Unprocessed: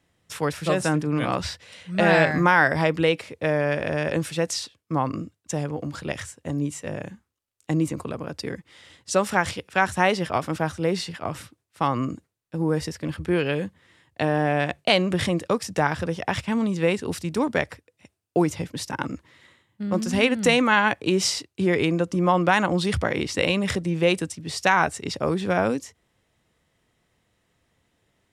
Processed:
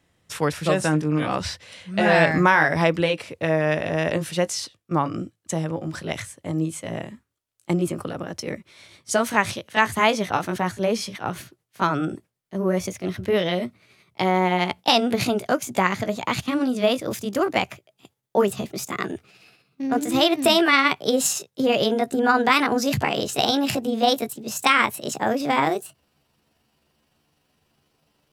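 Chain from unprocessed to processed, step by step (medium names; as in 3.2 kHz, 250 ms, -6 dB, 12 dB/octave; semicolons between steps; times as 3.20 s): pitch bend over the whole clip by +7 st starting unshifted; trim +2.5 dB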